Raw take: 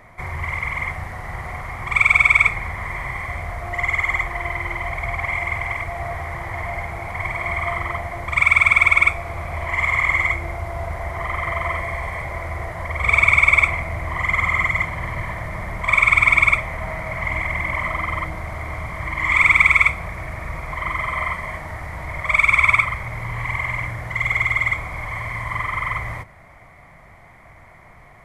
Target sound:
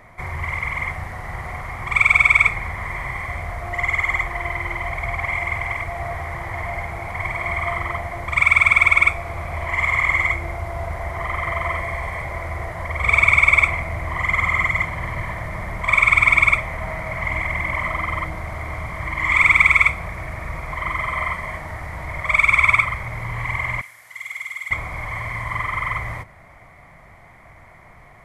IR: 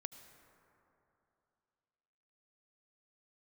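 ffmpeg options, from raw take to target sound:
-filter_complex "[0:a]asettb=1/sr,asplit=3[a][b][c];[a]atrim=end=23.814[d];[b]atrim=start=23.81:end=24.71,asetpts=PTS-STARTPTS,afade=t=in:d=0.004:c=qsin,afade=t=out:st=0.896:d=0.004:c=qsin,aderivative[e];[c]atrim=start=24.706[f];[d][e]acrossfade=d=0.004:c1=hsin:c2=qsin[g];[g][f]acrossfade=d=0.004:c1=qsin:c2=hsin"

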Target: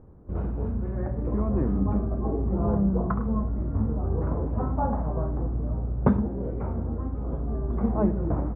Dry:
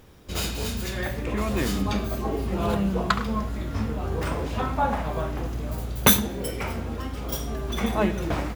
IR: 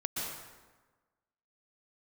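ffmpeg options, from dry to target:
-af "lowpass=f=1.2k:w=0.5412,lowpass=f=1.2k:w=1.3066,lowshelf=f=490:g=10,volume=-7dB"

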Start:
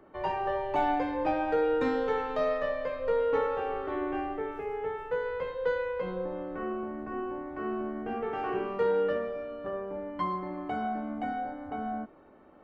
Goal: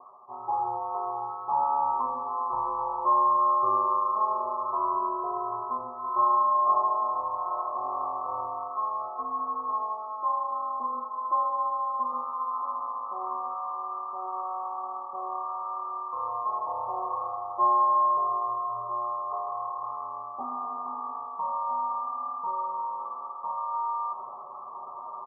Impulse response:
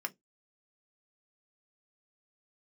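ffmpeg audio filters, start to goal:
-filter_complex "[0:a]aemphasis=mode=reproduction:type=75kf,aecho=1:1:4.3:0.85,areverse,acompressor=mode=upward:threshold=-26dB:ratio=2.5,areverse,aecho=1:1:653:0.251,asplit=2[a][b];[1:a]atrim=start_sample=2205[c];[b][c]afir=irnorm=-1:irlink=0,volume=-7dB[d];[a][d]amix=inputs=2:normalize=0,lowpass=f=2.2k:t=q:w=0.5098,lowpass=f=2.2k:t=q:w=0.6013,lowpass=f=2.2k:t=q:w=0.9,lowpass=f=2.2k:t=q:w=2.563,afreqshift=-2600,asetrate=22050,aresample=44100,volume=-3dB"

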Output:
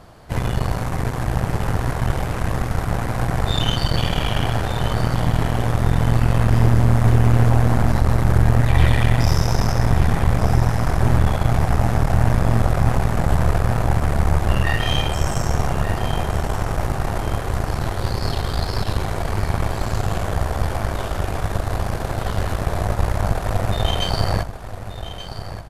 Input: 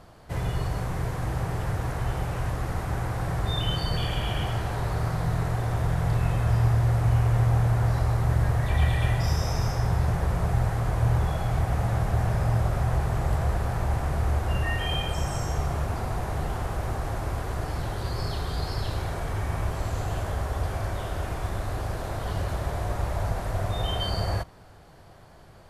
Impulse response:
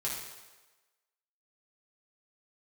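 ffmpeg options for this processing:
-af "aeval=exprs='0.299*(cos(1*acos(clip(val(0)/0.299,-1,1)))-cos(1*PI/2))+0.0531*(cos(6*acos(clip(val(0)/0.299,-1,1)))-cos(6*PI/2))':c=same,aecho=1:1:1180|2360|3540|4720:0.266|0.0984|0.0364|0.0135,volume=5.5dB"

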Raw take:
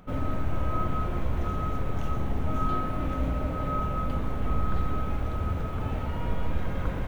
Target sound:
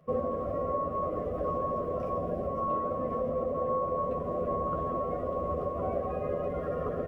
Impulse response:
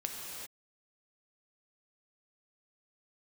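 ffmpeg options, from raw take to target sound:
-filter_complex "[0:a]afftdn=nr=15:nf=-39,highpass=f=370:p=1,equalizer=f=640:t=o:w=0.65:g=14,acompressor=threshold=-30dB:ratio=5,asetrate=38170,aresample=44100,atempo=1.15535,asuperstop=centerf=880:order=20:qfactor=4.6,asplit=2[a][b];[b]adelay=12,volume=-5dB[c];[a][c]amix=inputs=2:normalize=0,volume=2dB"

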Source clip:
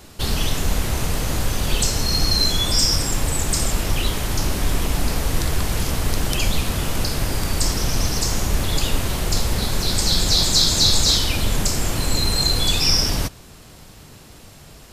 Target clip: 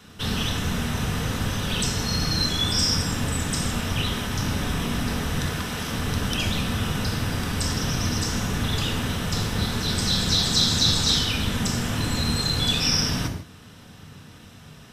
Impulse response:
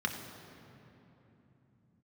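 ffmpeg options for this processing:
-filter_complex "[0:a]asettb=1/sr,asplit=3[a][b][c];[a]atrim=end=5.464[d];[b]atrim=start=5.46:end=5.93,asetpts=PTS-STARTPTS,afade=t=in:d=0.004:c=qsin,afade=t=out:st=0.466:d=0.004:c=qsin,lowshelf=f=160:g=-10[e];[c]atrim=start=5.926[f];[d][e]acrossfade=d=0.004:c1=hsin:c2=qsin[g];[g][f]acrossfade=d=0.004:c1=qsin:c2=hsin[h];[1:a]atrim=start_sample=2205,afade=t=out:st=0.21:d=0.01,atrim=end_sample=9702[i];[h][i]afir=irnorm=-1:irlink=0,volume=-7dB"

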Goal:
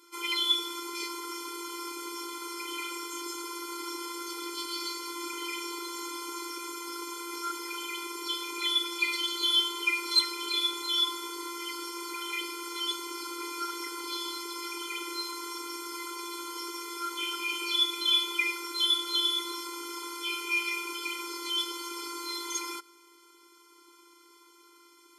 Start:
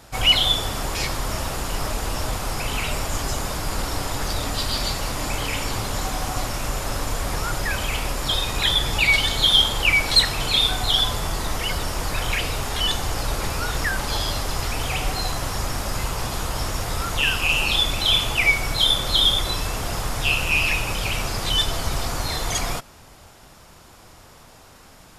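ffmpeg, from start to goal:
-af "afftfilt=real='hypot(re,im)*cos(PI*b)':imag='0':win_size=512:overlap=0.75,afftfilt=real='re*eq(mod(floor(b*sr/1024/260),2),1)':imag='im*eq(mod(floor(b*sr/1024/260),2),1)':win_size=1024:overlap=0.75,volume=-3dB"

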